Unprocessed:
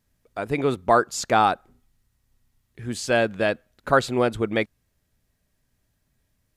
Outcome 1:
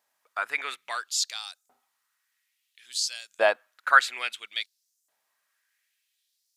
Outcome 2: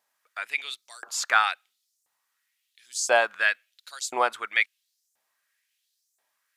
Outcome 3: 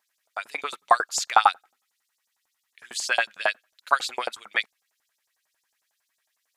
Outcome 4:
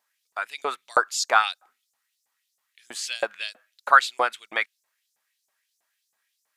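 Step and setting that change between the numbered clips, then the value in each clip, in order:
LFO high-pass, rate: 0.59, 0.97, 11, 3.1 Hz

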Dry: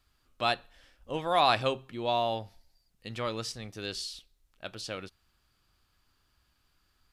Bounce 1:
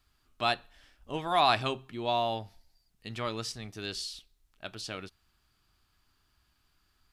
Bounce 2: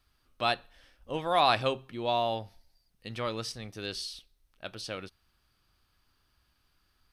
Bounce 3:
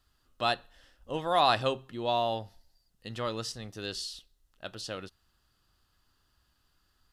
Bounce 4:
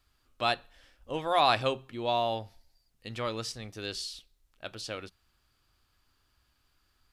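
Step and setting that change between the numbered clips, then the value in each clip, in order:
notch, frequency: 520, 7200, 2300, 180 Hz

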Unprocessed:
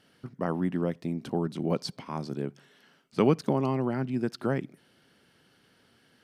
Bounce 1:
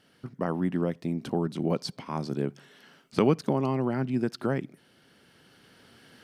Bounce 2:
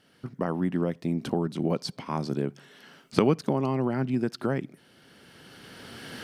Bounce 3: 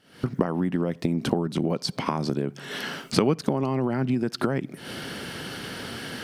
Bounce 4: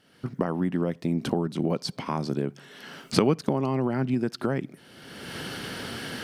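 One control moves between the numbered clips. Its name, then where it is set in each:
recorder AGC, rising by: 5.5, 14, 84, 33 dB/s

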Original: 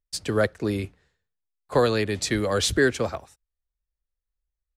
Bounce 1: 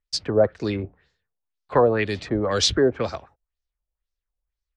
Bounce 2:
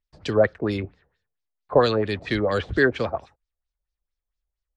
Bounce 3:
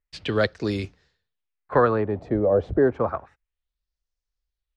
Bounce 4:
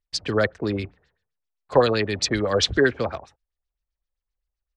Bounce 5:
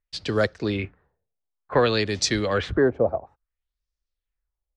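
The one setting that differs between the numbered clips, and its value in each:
LFO low-pass, rate: 2, 4.4, 0.3, 7.7, 0.57 Hz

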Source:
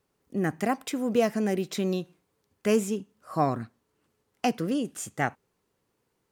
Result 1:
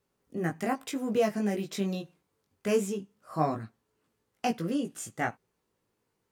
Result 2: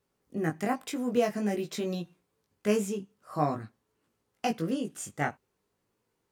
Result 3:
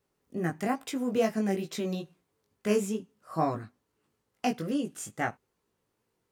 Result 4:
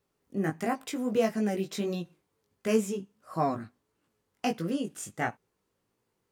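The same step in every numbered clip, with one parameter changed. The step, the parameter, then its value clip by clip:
chorus, rate: 0.21, 0.47, 2.3, 1.5 Hz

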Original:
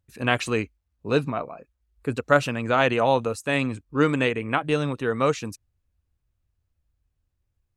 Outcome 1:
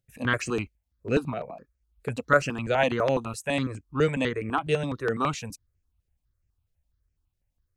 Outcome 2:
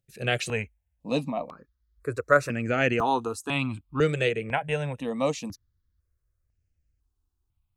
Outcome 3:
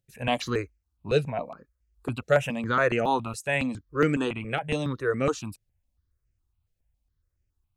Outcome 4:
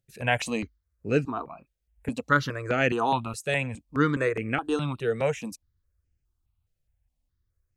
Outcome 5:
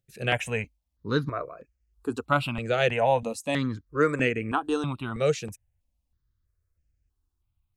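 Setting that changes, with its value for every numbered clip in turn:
step phaser, rate: 12, 2, 7.2, 4.8, 3.1 Hz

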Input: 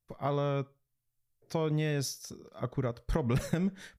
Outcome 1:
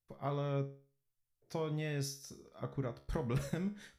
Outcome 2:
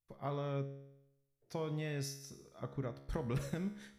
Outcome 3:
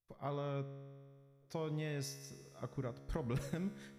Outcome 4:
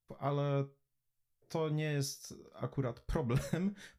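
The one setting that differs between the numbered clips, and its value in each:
resonator, decay: 0.41, 0.89, 2.2, 0.18 s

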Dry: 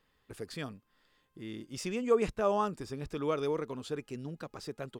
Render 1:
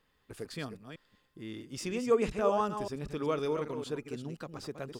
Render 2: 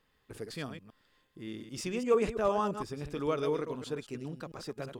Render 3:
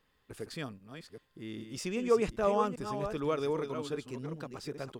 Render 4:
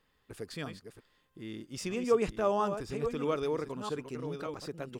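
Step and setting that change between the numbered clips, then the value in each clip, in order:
reverse delay, time: 0.192, 0.113, 0.394, 0.649 s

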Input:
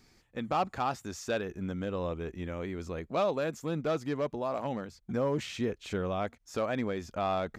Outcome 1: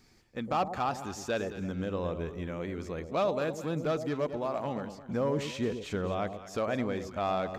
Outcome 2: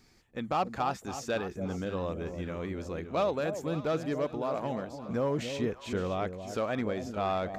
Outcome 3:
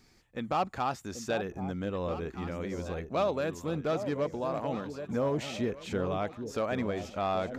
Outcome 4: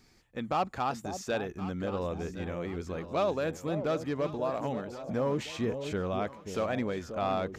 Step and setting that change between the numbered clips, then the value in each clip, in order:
echo with dull and thin repeats by turns, time: 0.11, 0.283, 0.784, 0.534 s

